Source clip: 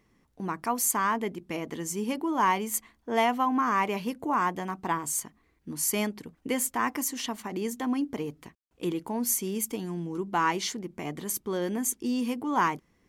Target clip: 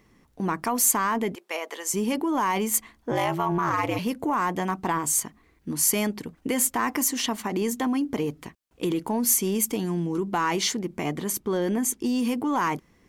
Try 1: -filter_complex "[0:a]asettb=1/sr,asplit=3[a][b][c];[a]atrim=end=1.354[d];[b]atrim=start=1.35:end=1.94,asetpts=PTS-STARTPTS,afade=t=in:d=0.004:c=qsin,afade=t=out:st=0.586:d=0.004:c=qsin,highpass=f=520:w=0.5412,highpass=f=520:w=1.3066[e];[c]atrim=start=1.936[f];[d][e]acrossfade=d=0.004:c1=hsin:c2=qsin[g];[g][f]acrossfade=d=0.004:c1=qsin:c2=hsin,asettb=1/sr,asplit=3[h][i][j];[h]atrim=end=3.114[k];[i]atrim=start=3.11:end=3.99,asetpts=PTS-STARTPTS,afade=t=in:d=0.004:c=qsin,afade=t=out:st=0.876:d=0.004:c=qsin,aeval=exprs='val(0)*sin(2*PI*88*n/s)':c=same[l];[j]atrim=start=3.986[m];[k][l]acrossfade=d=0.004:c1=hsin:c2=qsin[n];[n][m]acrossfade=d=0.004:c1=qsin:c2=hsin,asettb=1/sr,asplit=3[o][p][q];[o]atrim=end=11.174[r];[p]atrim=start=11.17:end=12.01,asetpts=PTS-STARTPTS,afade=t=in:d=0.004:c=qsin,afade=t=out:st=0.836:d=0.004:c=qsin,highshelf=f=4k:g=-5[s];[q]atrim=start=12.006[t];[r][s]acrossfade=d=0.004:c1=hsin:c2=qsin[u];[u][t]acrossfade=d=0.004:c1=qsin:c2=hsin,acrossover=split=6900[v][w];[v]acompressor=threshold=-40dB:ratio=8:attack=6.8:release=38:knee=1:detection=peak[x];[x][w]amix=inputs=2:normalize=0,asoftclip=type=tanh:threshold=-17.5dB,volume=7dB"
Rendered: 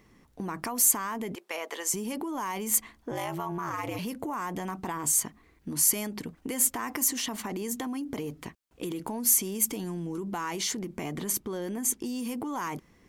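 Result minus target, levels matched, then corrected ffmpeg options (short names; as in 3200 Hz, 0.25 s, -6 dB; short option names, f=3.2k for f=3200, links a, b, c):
compressor: peak gain reduction +9 dB
-filter_complex "[0:a]asettb=1/sr,asplit=3[a][b][c];[a]atrim=end=1.354[d];[b]atrim=start=1.35:end=1.94,asetpts=PTS-STARTPTS,afade=t=in:d=0.004:c=qsin,afade=t=out:st=0.586:d=0.004:c=qsin,highpass=f=520:w=0.5412,highpass=f=520:w=1.3066[e];[c]atrim=start=1.936[f];[d][e]acrossfade=d=0.004:c1=hsin:c2=qsin[g];[g][f]acrossfade=d=0.004:c1=qsin:c2=hsin,asettb=1/sr,asplit=3[h][i][j];[h]atrim=end=3.114[k];[i]atrim=start=3.11:end=3.99,asetpts=PTS-STARTPTS,afade=t=in:d=0.004:c=qsin,afade=t=out:st=0.876:d=0.004:c=qsin,aeval=exprs='val(0)*sin(2*PI*88*n/s)':c=same[l];[j]atrim=start=3.986[m];[k][l]acrossfade=d=0.004:c1=hsin:c2=qsin[n];[n][m]acrossfade=d=0.004:c1=qsin:c2=hsin,asettb=1/sr,asplit=3[o][p][q];[o]atrim=end=11.174[r];[p]atrim=start=11.17:end=12.01,asetpts=PTS-STARTPTS,afade=t=in:d=0.004:c=qsin,afade=t=out:st=0.836:d=0.004:c=qsin,highshelf=f=4k:g=-5[s];[q]atrim=start=12.006[t];[r][s]acrossfade=d=0.004:c1=hsin:c2=qsin[u];[u][t]acrossfade=d=0.004:c1=qsin:c2=hsin,acrossover=split=6900[v][w];[v]acompressor=threshold=-29.5dB:ratio=8:attack=6.8:release=38:knee=1:detection=peak[x];[x][w]amix=inputs=2:normalize=0,asoftclip=type=tanh:threshold=-17.5dB,volume=7dB"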